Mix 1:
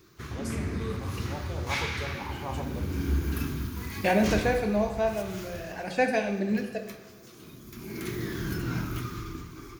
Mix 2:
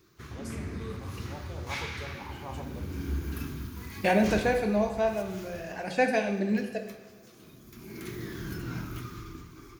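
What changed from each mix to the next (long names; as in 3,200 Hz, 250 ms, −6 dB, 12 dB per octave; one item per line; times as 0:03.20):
first voice −5.0 dB
background −5.0 dB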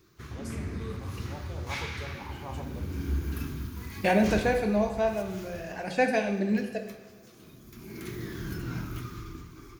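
master: add low-shelf EQ 120 Hz +3.5 dB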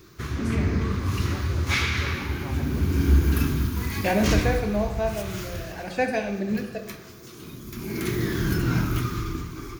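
background +11.5 dB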